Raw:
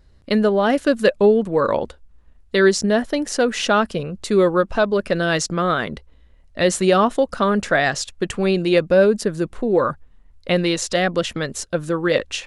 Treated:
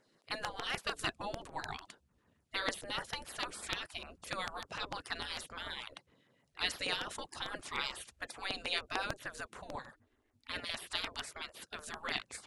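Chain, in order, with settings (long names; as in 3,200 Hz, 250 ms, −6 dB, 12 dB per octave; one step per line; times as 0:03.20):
auto-filter notch saw down 6.7 Hz 450–5,100 Hz
0:09.75–0:10.70: ring modulation 170 Hz
gate on every frequency bin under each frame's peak −20 dB weak
level −4.5 dB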